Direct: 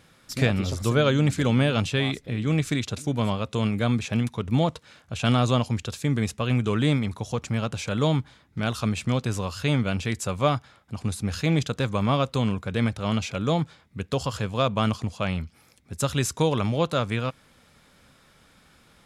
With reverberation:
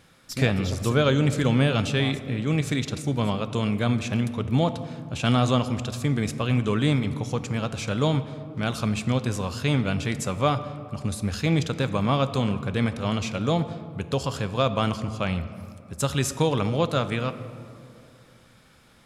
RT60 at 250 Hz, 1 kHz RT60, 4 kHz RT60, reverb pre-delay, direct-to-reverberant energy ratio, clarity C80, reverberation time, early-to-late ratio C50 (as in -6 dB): 3.2 s, 2.4 s, 1.1 s, 3 ms, 11.0 dB, 13.5 dB, 2.6 s, 12.5 dB